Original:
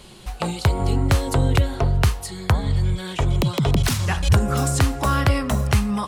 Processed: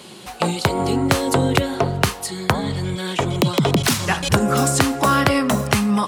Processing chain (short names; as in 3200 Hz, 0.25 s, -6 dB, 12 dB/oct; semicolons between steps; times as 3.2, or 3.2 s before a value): Chebyshev high-pass 210 Hz, order 2; gain +6.5 dB